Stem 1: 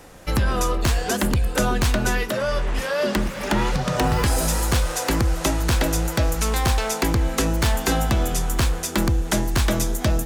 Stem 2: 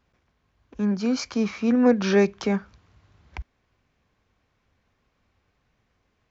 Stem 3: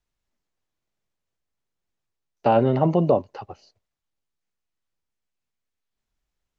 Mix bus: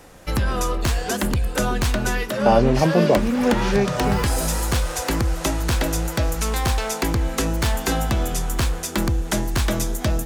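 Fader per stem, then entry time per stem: −1.0, −2.0, +1.5 decibels; 0.00, 1.60, 0.00 seconds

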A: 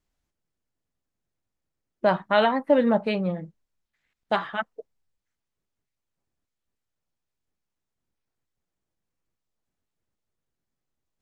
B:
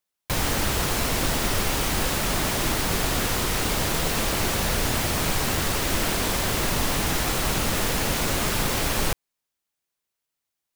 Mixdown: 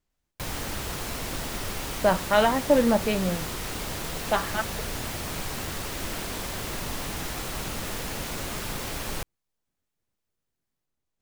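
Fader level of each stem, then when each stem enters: −0.5, −8.5 decibels; 0.00, 0.10 seconds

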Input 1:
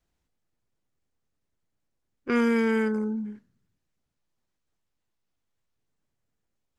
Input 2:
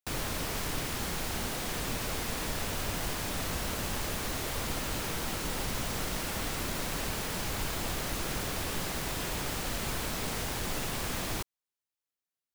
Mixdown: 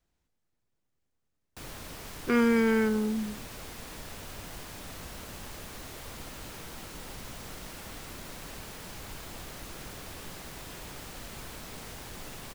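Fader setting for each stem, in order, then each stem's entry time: −0.5, −9.0 decibels; 0.00, 1.50 seconds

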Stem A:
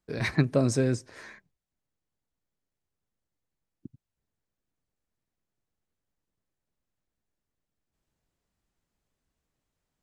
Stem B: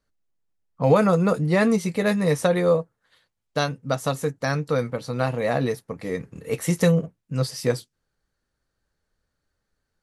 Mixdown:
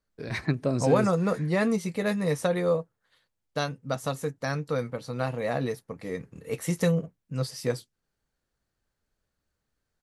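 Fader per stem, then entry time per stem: −3.0, −5.5 decibels; 0.10, 0.00 seconds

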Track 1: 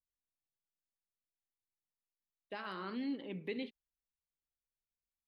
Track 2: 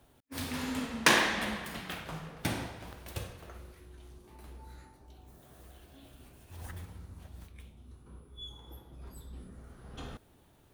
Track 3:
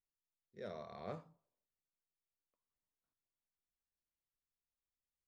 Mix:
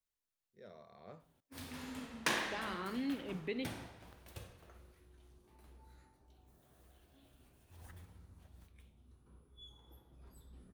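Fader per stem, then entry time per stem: +0.5, −11.0, −8.5 decibels; 0.00, 1.20, 0.00 seconds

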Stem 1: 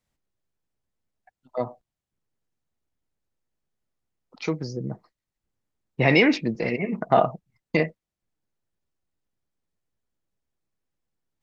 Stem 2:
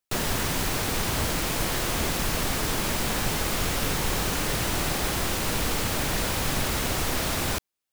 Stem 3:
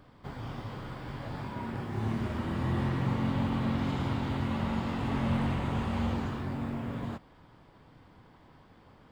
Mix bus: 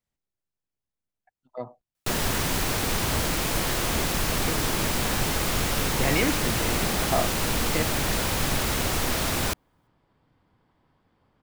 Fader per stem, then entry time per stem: −7.5, +1.0, −10.5 decibels; 0.00, 1.95, 2.35 seconds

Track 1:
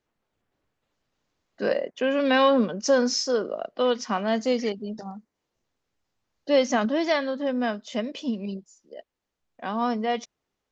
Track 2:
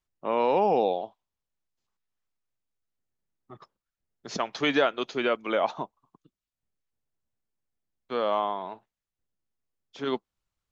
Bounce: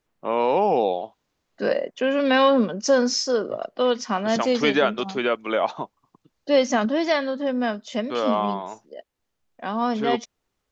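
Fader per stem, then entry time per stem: +2.0, +3.0 decibels; 0.00, 0.00 seconds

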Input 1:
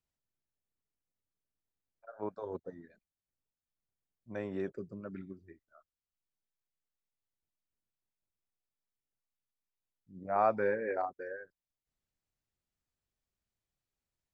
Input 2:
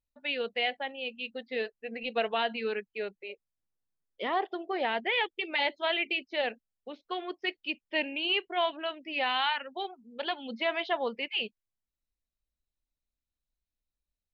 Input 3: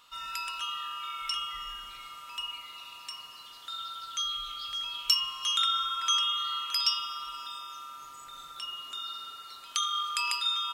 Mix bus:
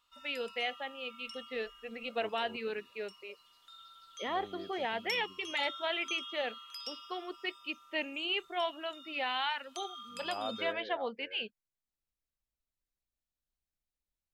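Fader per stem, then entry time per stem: −11.0, −5.0, −16.0 decibels; 0.00, 0.00, 0.00 seconds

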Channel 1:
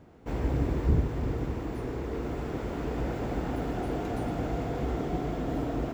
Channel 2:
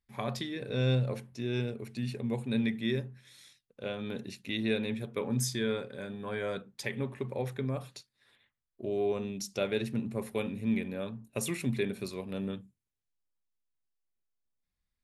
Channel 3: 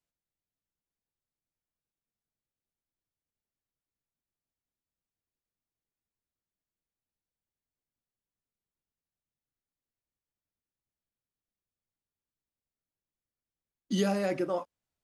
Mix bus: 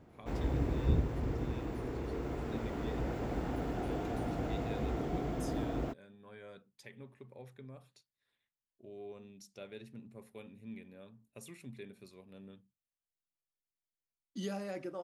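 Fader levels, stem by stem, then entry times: −5.0, −17.0, −11.0 decibels; 0.00, 0.00, 0.45 seconds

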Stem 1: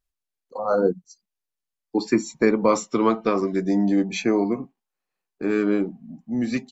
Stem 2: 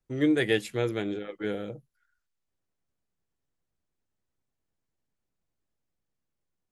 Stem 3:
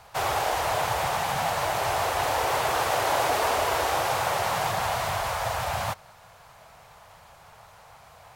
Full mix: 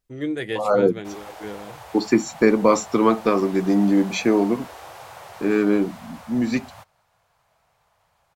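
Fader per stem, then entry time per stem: +2.5, −3.0, −15.0 decibels; 0.00, 0.00, 0.90 seconds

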